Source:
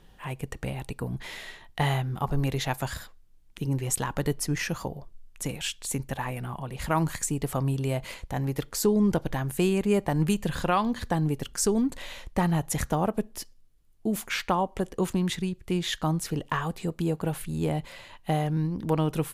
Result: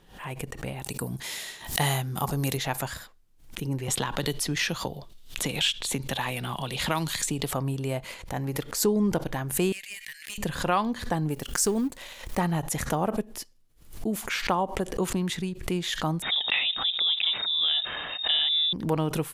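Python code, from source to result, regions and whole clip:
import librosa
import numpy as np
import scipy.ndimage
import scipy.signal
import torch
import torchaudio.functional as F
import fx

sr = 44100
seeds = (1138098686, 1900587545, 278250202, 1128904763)

y = fx.chain(x, sr, fx.highpass(hz=110.0, slope=6),
    fx.bass_treble(bass_db=4, treble_db=14), at=(0.82, 2.57))
y = fx.chain(y, sr, fx.peak_eq(hz=3600.0, db=11.5, octaves=0.74),
    fx.band_squash(depth_pct=70), at=(3.88, 7.51))
y = fx.chain(y, sr, fx.steep_highpass(hz=1700.0, slope=72),
    fx.tube_stage(drive_db=28.0, bias=0.6),
    fx.env_flatten(amount_pct=50), at=(9.72, 10.38))
y = fx.chain(y, sr, fx.law_mismatch(coded='A'),
    fx.high_shelf(hz=6100.0, db=5.0), at=(11.3, 12.39))
y = fx.chain(y, sr, fx.freq_invert(carrier_hz=3700),
    fx.env_flatten(amount_pct=50), at=(16.22, 18.73))
y = fx.low_shelf(y, sr, hz=120.0, db=-7.0)
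y = fx.pre_swell(y, sr, db_per_s=110.0)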